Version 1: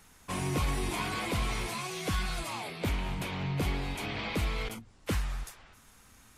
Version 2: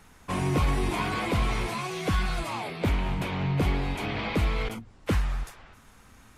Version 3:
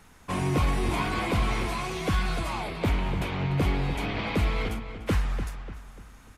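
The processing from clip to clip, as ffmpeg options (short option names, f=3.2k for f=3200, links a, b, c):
-af "highshelf=f=3.5k:g=-9.5,volume=6dB"
-filter_complex "[0:a]asplit=2[a][b];[b]adelay=295,lowpass=f=3.2k:p=1,volume=-10dB,asplit=2[c][d];[d]adelay=295,lowpass=f=3.2k:p=1,volume=0.41,asplit=2[e][f];[f]adelay=295,lowpass=f=3.2k:p=1,volume=0.41,asplit=2[g][h];[h]adelay=295,lowpass=f=3.2k:p=1,volume=0.41[i];[a][c][e][g][i]amix=inputs=5:normalize=0"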